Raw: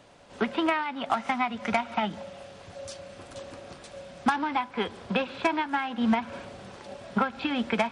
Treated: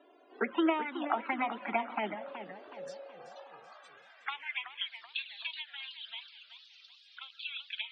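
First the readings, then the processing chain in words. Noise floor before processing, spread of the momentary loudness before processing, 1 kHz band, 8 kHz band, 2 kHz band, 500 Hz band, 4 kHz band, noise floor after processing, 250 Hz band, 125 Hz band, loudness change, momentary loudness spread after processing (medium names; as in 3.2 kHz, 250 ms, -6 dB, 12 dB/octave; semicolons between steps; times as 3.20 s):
-48 dBFS, 17 LU, -9.0 dB, -18.0 dB, -6.5 dB, -7.5 dB, -2.0 dB, -61 dBFS, -9.0 dB, -19.5 dB, -8.0 dB, 21 LU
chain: dynamic bell 1.4 kHz, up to +6 dB, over -39 dBFS, Q 0.85; touch-sensitive flanger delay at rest 3 ms, full sweep at -18.5 dBFS; high-pass sweep 350 Hz -> 3.5 kHz, 2.59–4.92 s; loudest bins only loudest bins 64; modulated delay 376 ms, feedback 46%, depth 176 cents, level -11 dB; trim -5.5 dB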